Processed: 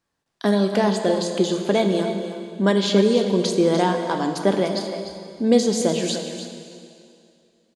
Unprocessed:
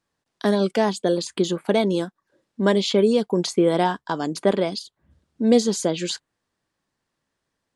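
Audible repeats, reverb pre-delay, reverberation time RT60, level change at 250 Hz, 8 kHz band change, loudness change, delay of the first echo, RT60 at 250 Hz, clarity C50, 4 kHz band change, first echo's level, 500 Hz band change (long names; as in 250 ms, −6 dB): 1, 6 ms, 2.5 s, +2.0 dB, +1.5 dB, +1.0 dB, 297 ms, 2.4 s, 5.0 dB, +1.5 dB, −11.0 dB, +1.0 dB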